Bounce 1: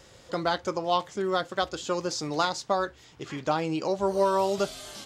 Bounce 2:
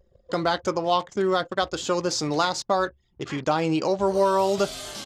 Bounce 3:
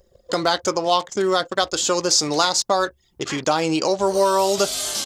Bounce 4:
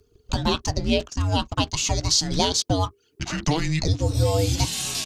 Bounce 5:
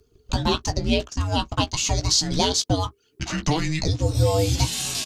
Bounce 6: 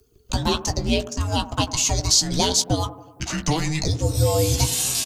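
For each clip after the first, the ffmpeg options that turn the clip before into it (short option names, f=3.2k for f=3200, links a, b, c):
-filter_complex "[0:a]anlmdn=0.0631,asplit=2[a][b];[b]alimiter=limit=-22dB:level=0:latency=1:release=114,volume=0dB[c];[a][c]amix=inputs=2:normalize=0"
-filter_complex "[0:a]bass=f=250:g=-6,treble=f=4k:g=10,asplit=2[a][b];[b]acompressor=threshold=-30dB:ratio=6,volume=-1.5dB[c];[a][c]amix=inputs=2:normalize=0,volume=1.5dB"
-af "afreqshift=-470,volume=-2.5dB"
-filter_complex "[0:a]asplit=2[a][b];[b]adelay=16,volume=-9.5dB[c];[a][c]amix=inputs=2:normalize=0"
-filter_complex "[0:a]acrossover=split=110|1600|5100[a][b][c][d];[b]aecho=1:1:92|184|276|368|460|552:0.211|0.125|0.0736|0.0434|0.0256|0.0151[e];[d]crystalizer=i=1.5:c=0[f];[a][e][c][f]amix=inputs=4:normalize=0"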